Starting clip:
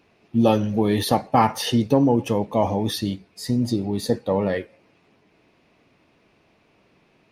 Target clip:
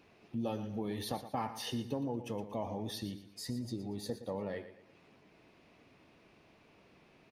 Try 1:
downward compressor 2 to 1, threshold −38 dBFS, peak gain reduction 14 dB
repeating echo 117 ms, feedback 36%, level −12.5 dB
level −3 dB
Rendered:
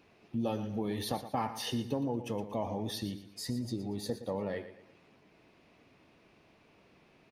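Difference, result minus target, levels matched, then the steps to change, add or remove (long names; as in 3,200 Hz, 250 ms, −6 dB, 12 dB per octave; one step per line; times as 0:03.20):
downward compressor: peak gain reduction −3.5 dB
change: downward compressor 2 to 1, threshold −44.5 dBFS, peak gain reduction 17 dB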